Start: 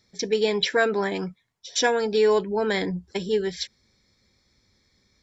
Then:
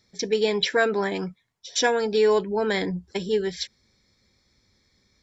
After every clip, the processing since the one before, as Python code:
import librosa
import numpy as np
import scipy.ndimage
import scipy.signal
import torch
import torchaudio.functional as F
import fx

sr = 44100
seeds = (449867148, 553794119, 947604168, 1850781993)

y = x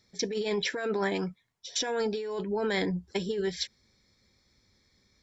y = fx.over_compress(x, sr, threshold_db=-25.0, ratio=-1.0)
y = y * librosa.db_to_amplitude(-4.5)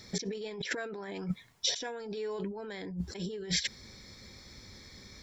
y = fx.over_compress(x, sr, threshold_db=-43.0, ratio=-1.0)
y = y * librosa.db_to_amplitude(5.5)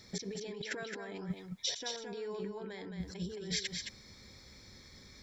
y = x + 10.0 ** (-5.5 / 20.0) * np.pad(x, (int(217 * sr / 1000.0), 0))[:len(x)]
y = y * librosa.db_to_amplitude(-5.0)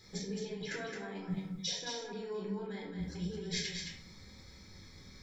y = fx.room_shoebox(x, sr, seeds[0], volume_m3=620.0, walls='furnished', distance_m=4.0)
y = y * librosa.db_to_amplitude(-6.0)